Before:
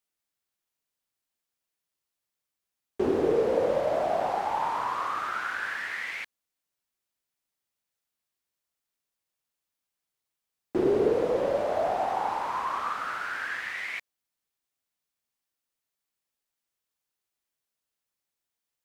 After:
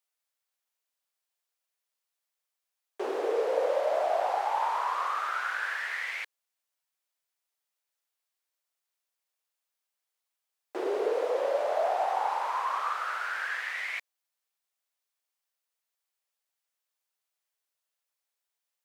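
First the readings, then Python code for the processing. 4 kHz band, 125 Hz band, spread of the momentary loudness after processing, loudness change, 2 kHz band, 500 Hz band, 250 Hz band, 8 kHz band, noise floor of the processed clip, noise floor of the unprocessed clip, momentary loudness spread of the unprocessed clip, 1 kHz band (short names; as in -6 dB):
0.0 dB, under -35 dB, 7 LU, -1.5 dB, 0.0 dB, -3.0 dB, -12.5 dB, n/a, under -85 dBFS, under -85 dBFS, 8 LU, 0.0 dB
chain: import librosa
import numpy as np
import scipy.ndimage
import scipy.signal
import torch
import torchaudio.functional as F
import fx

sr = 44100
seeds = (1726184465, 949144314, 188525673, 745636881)

y = scipy.signal.sosfilt(scipy.signal.butter(4, 480.0, 'highpass', fs=sr, output='sos'), x)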